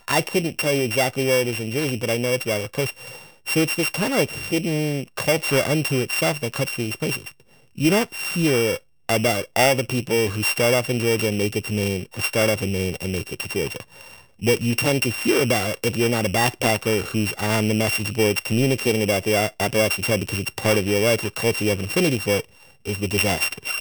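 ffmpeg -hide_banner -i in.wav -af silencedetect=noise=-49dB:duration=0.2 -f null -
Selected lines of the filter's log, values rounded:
silence_start: 8.83
silence_end: 9.09 | silence_duration: 0.27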